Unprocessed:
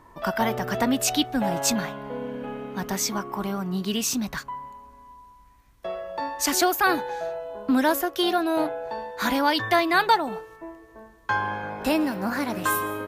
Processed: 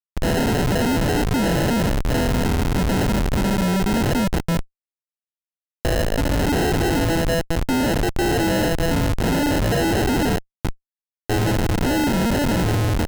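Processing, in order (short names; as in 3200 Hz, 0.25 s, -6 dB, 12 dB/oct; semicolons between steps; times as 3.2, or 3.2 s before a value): sample-and-hold 38×; Schmitt trigger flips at -33.5 dBFS; gain +7.5 dB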